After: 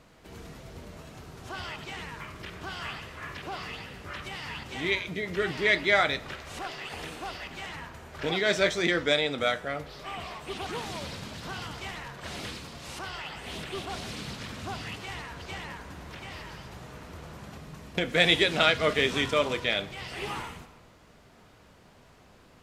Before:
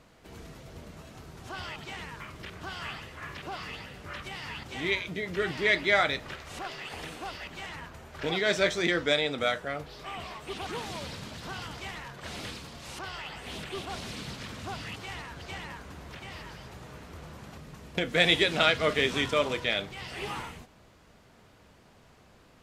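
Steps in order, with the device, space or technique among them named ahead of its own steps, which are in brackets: compressed reverb return (on a send at -7 dB: reverb RT60 0.85 s, pre-delay 55 ms + compressor, threshold -41 dBFS, peak gain reduction 19.5 dB); on the sum: gain +1 dB

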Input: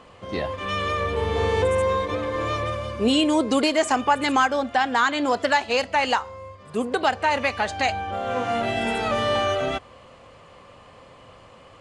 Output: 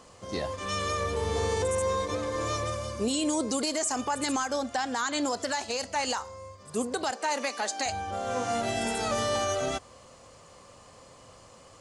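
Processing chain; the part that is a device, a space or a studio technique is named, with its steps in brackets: over-bright horn tweeter (resonant high shelf 4200 Hz +11.5 dB, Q 1.5; limiter -15 dBFS, peak gain reduction 9 dB); 7.11–7.86 steep high-pass 220 Hz 36 dB/oct; gain -4.5 dB

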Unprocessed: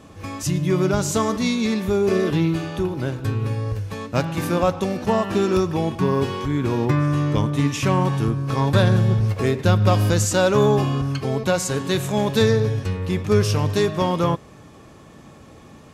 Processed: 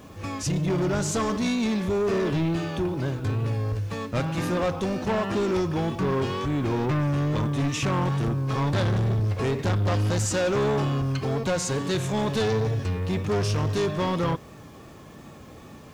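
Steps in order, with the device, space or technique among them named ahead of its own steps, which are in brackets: compact cassette (soft clip -20.5 dBFS, distortion -9 dB; LPF 8400 Hz 12 dB/oct; wow and flutter; white noise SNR 39 dB)

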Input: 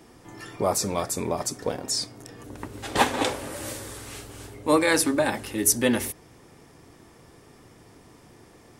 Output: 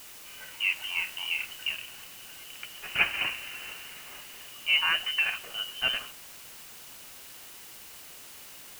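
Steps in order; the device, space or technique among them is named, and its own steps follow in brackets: scrambled radio voice (BPF 360–2600 Hz; inverted band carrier 3300 Hz; white noise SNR 13 dB); 0.73–1.73 doubler 29 ms -6 dB; gain -3 dB

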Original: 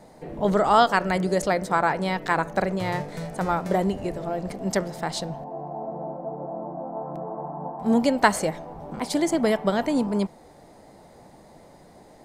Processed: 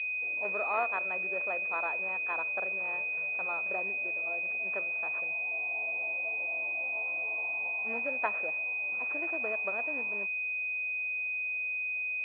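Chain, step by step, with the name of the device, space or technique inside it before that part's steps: toy sound module (decimation joined by straight lines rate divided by 4×; pulse-width modulation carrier 2500 Hz; speaker cabinet 740–3700 Hz, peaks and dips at 840 Hz -6 dB, 2000 Hz +4 dB, 3200 Hz +3 dB); gain -7 dB

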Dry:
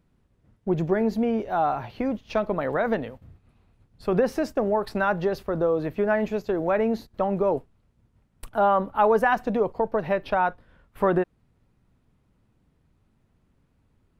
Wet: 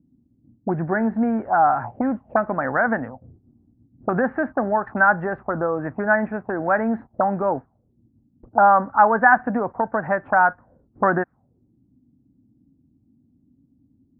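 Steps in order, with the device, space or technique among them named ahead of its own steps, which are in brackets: envelope filter bass rig (envelope low-pass 280–1600 Hz up, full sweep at -23 dBFS; speaker cabinet 64–2000 Hz, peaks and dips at 120 Hz +4 dB, 250 Hz +6 dB, 430 Hz -7 dB, 780 Hz +6 dB)

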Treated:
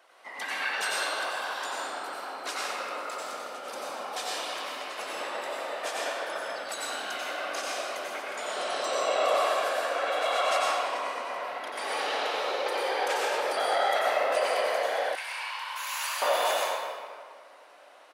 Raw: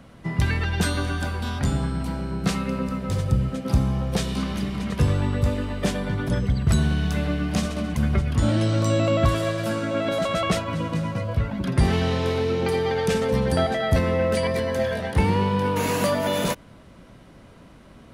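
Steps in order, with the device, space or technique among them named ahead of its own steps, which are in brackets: whispering ghost (whisperiser; HPF 590 Hz 24 dB/oct; reverb RT60 2.0 s, pre-delay 84 ms, DRR -5 dB); 15.15–16.22 Bessel high-pass 1700 Hz, order 4; outdoor echo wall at 55 m, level -28 dB; gain -5.5 dB

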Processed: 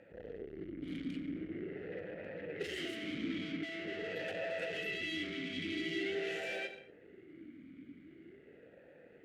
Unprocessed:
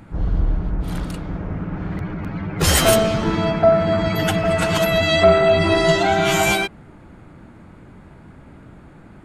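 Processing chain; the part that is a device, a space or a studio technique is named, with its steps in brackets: 4.79–6.15 EQ curve 230 Hz 0 dB, 880 Hz -11 dB, 2400 Hz 0 dB; non-linear reverb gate 0.27 s falling, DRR 12 dB; talk box (tube stage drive 29 dB, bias 0.75; vowel sweep e-i 0.45 Hz); gain +5 dB

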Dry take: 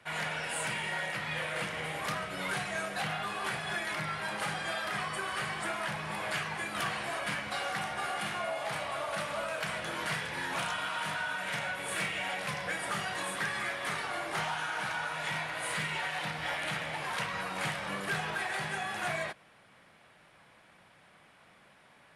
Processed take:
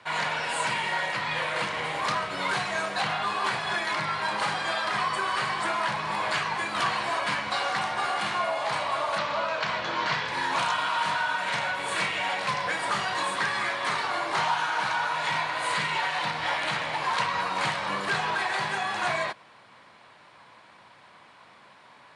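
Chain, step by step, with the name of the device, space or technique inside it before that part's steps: 9.18–10.28 LPF 6100 Hz 24 dB/oct; car door speaker (speaker cabinet 91–8400 Hz, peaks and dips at 170 Hz -6 dB, 1000 Hz +9 dB, 4200 Hz +6 dB); gain +5 dB

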